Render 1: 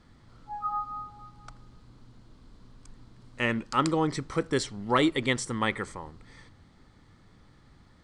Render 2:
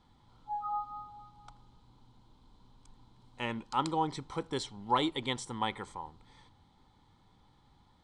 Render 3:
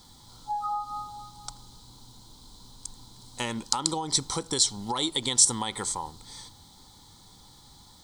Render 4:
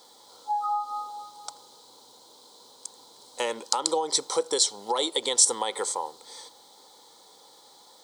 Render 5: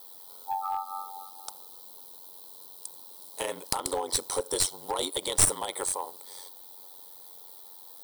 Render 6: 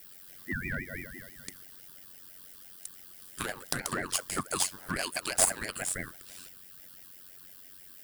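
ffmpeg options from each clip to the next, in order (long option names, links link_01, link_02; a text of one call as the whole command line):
ffmpeg -i in.wav -af "superequalizer=9b=3.16:11b=0.631:13b=2,volume=-8.5dB" out.wav
ffmpeg -i in.wav -af "alimiter=limit=-23.5dB:level=0:latency=1:release=143,acompressor=threshold=-36dB:ratio=6,aexciter=amount=8.6:drive=4.5:freq=3900,volume=8.5dB" out.wav
ffmpeg -i in.wav -af "highpass=frequency=490:width_type=q:width=3.6" out.wav
ffmpeg -i in.wav -af "aeval=exprs='val(0)*sin(2*PI*46*n/s)':channel_layout=same,aexciter=amount=7.3:drive=7.9:freq=9800,aeval=exprs='clip(val(0),-1,0.0668)':channel_layout=same,volume=-1dB" out.wav
ffmpeg -i in.wav -af "aeval=exprs='val(0)*sin(2*PI*890*n/s+890*0.3/6*sin(2*PI*6*n/s))':channel_layout=same" out.wav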